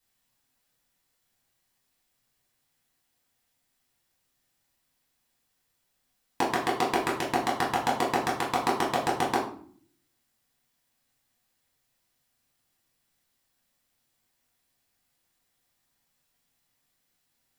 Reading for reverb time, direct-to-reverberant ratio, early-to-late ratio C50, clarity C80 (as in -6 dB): 0.55 s, -5.5 dB, 6.0 dB, 10.5 dB